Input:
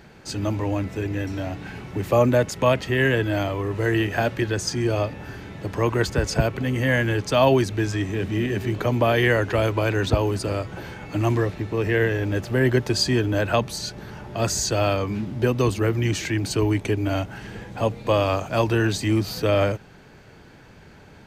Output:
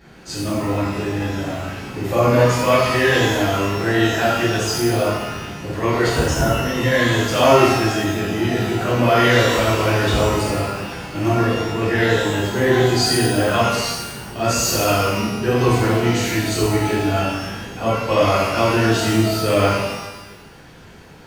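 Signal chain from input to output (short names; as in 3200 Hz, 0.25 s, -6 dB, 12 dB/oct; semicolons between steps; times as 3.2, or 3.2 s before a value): 6.23–6.66 brick-wall FIR band-stop 2200–5000 Hz; shimmer reverb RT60 1 s, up +12 st, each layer -8 dB, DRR -10 dB; gain -5.5 dB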